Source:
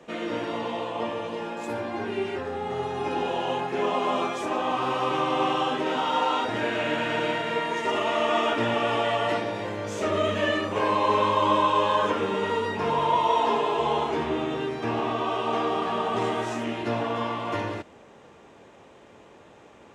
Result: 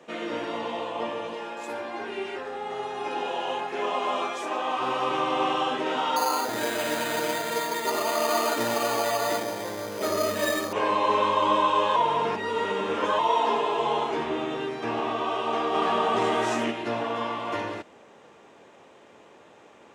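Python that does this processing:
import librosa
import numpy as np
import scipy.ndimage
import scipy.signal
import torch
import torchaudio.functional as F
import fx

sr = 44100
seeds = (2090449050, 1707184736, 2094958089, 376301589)

y = fx.low_shelf(x, sr, hz=220.0, db=-11.5, at=(1.33, 4.81))
y = fx.resample_bad(y, sr, factor=8, down='filtered', up='hold', at=(6.16, 10.73))
y = fx.env_flatten(y, sr, amount_pct=50, at=(15.73, 16.7), fade=0.02)
y = fx.edit(y, sr, fx.reverse_span(start_s=11.96, length_s=1.23), tone=tone)
y = fx.highpass(y, sr, hz=260.0, slope=6)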